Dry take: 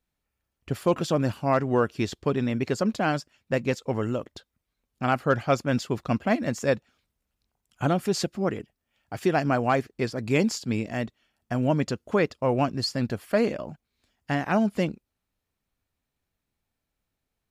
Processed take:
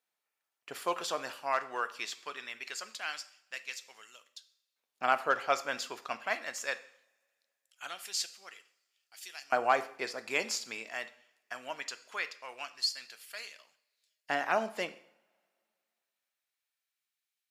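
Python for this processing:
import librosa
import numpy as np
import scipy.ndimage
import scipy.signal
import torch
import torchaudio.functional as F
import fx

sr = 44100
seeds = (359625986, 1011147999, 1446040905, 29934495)

y = fx.filter_lfo_highpass(x, sr, shape='saw_up', hz=0.21, low_hz=580.0, high_hz=4500.0, q=0.74)
y = fx.rev_double_slope(y, sr, seeds[0], early_s=0.59, late_s=2.3, knee_db=-26, drr_db=10.5)
y = y * 10.0 ** (-1.5 / 20.0)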